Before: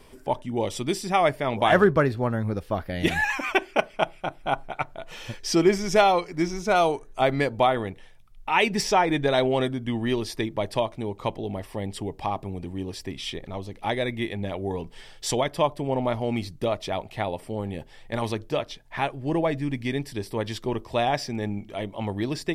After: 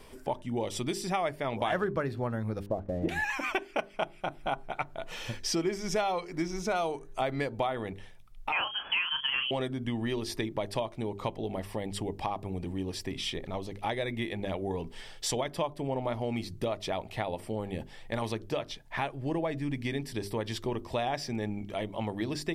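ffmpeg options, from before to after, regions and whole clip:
-filter_complex "[0:a]asettb=1/sr,asplit=3[s0][s1][s2];[s0]atrim=end=2.664[s3];[s1]atrim=start=2.66:end=3.09,asetpts=PTS-STARTPTS,afade=t=in:d=0.004:c=qsin,afade=t=out:st=0.426:d=0.004:c=qsin,lowpass=f=590:t=q:w=1.7,aeval=exprs='sgn(val(0))*max(abs(val(0))-0.00211,0)':c=same[s4];[s2]atrim=start=3.086[s5];[s3][s4]acrossfade=d=0.004:c1=hsin:c2=qsin[s6];[s6][s5]acrossfade=d=0.004:c1=qsin:c2=hsin,asettb=1/sr,asplit=3[s7][s8][s9];[s7]atrim=end=8.524[s10];[s8]atrim=start=8.52:end=9.51,asetpts=PTS-STARTPTS,afade=t=in:d=0.004:c=qsin,afade=t=out:st=0.986:d=0.004:c=qsin,lowshelf=f=200:g=-9,asplit=2[s11][s12];[s12]adelay=32,volume=0.316[s13];[s11][s13]amix=inputs=2:normalize=0,atrim=end_sample=43659,lowpass=f=2900:t=q:w=0.5098,lowpass=f=2900:t=q:w=0.6013,lowpass=f=2900:t=q:w=0.9,lowpass=f=2900:t=q:w=2.563,afreqshift=-3400[s14];[s9]atrim=start=9.506[s15];[s10][s14]acrossfade=d=0.004:c1=hsin:c2=qsin[s16];[s16][s15]acrossfade=d=0.004:c1=qsin:c2=hsin,bandreject=f=50:t=h:w=6,bandreject=f=100:t=h:w=6,bandreject=f=150:t=h:w=6,bandreject=f=200:t=h:w=6,bandreject=f=250:t=h:w=6,bandreject=f=300:t=h:w=6,bandreject=f=350:t=h:w=6,bandreject=f=400:t=h:w=6,acompressor=threshold=0.0316:ratio=3"

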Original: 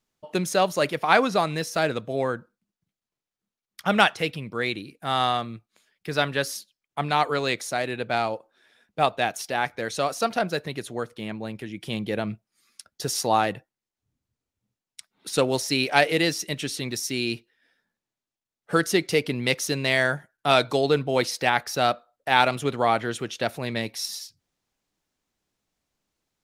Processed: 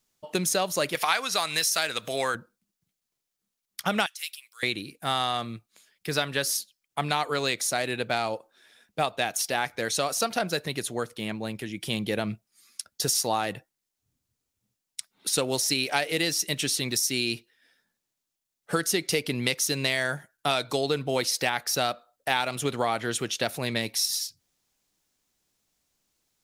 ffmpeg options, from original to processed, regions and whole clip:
-filter_complex "[0:a]asettb=1/sr,asplit=3[s0][s1][s2];[s0]atrim=end=0.954[s3];[s1]atrim=start=0.95:end=2.35,asetpts=PTS-STARTPTS,afade=t=in:d=0.004:c=qsin,afade=t=out:st=1.396:d=0.004:c=qsin,tiltshelf=f=720:g=-9.5,acompressor=mode=upward:threshold=0.0447:ratio=2.5:attack=3.2:release=140:knee=2.83:detection=peak[s4];[s2]atrim=start=2.346[s5];[s3][s4]acrossfade=d=0.004:c1=hsin:c2=qsin[s6];[s6][s5]acrossfade=d=0.004:c1=qsin:c2=hsin,asettb=1/sr,asplit=3[s7][s8][s9];[s7]atrim=end=4.064[s10];[s8]atrim=start=4.06:end=4.63,asetpts=PTS-STARTPTS,afade=t=in:d=0.004:c=qsin,afade=t=out:st=0.566:d=0.004:c=qsin,highpass=1400,aderivative[s11];[s9]atrim=start=4.626[s12];[s10][s11]acrossfade=d=0.004:c1=hsin:c2=qsin[s13];[s13][s12]acrossfade=d=0.004:c1=qsin:c2=hsin,highshelf=f=3900:g=10.5,acompressor=threshold=0.0794:ratio=6"

